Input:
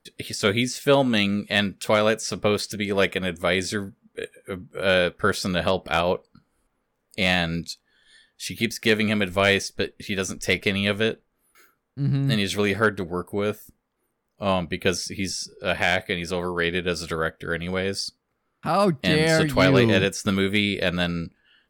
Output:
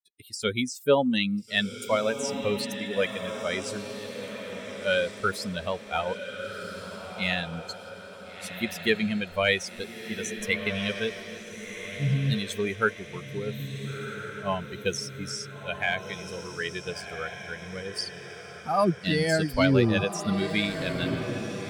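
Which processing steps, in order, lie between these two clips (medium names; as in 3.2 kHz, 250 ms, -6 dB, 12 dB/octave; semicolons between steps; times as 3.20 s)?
expander on every frequency bin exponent 2; echo that smears into a reverb 1414 ms, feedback 50%, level -8.5 dB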